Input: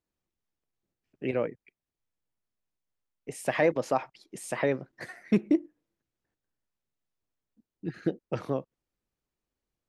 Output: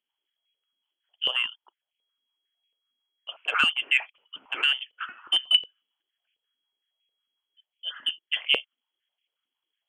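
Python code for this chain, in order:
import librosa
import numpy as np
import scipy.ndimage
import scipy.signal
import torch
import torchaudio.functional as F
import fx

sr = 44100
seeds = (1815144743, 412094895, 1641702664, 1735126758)

y = fx.freq_invert(x, sr, carrier_hz=3300)
y = 10.0 ** (-13.5 / 20.0) * np.tanh(y / 10.0 ** (-13.5 / 20.0))
y = fx.filter_held_highpass(y, sr, hz=11.0, low_hz=250.0, high_hz=2400.0)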